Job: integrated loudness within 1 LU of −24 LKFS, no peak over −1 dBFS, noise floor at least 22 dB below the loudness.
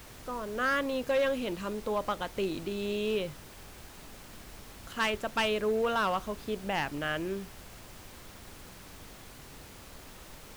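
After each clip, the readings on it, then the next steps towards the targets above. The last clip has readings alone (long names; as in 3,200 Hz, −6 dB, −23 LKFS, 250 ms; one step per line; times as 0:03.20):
share of clipped samples 0.6%; peaks flattened at −22.5 dBFS; background noise floor −50 dBFS; target noise floor −54 dBFS; integrated loudness −31.5 LKFS; sample peak −22.5 dBFS; target loudness −24.0 LKFS
→ clipped peaks rebuilt −22.5 dBFS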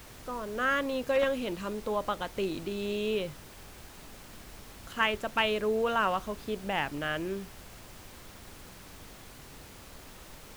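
share of clipped samples 0.0%; background noise floor −50 dBFS; target noise floor −53 dBFS
→ noise reduction from a noise print 6 dB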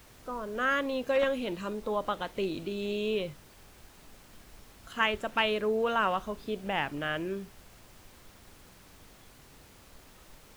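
background noise floor −56 dBFS; integrated loudness −31.0 LKFS; sample peak −13.5 dBFS; target loudness −24.0 LKFS
→ level +7 dB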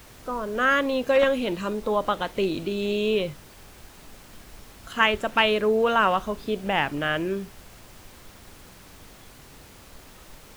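integrated loudness −24.0 LKFS; sample peak −6.5 dBFS; background noise floor −49 dBFS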